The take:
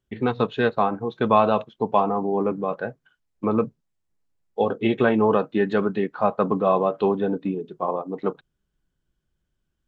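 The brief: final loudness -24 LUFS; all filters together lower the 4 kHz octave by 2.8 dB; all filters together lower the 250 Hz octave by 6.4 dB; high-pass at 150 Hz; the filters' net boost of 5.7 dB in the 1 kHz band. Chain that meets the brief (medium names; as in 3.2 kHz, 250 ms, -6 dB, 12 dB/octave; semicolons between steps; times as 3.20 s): high-pass 150 Hz; peaking EQ 250 Hz -8 dB; peaking EQ 1 kHz +7.5 dB; peaking EQ 4 kHz -4 dB; trim -2.5 dB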